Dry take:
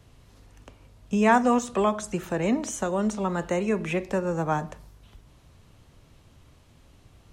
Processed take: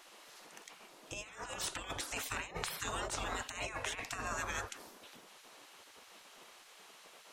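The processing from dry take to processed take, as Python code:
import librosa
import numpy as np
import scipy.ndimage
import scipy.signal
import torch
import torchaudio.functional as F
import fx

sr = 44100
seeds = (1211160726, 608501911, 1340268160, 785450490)

y = fx.spec_gate(x, sr, threshold_db=-20, keep='weak')
y = fx.over_compress(y, sr, threshold_db=-44.0, ratio=-0.5)
y = F.gain(torch.from_numpy(y), 4.5).numpy()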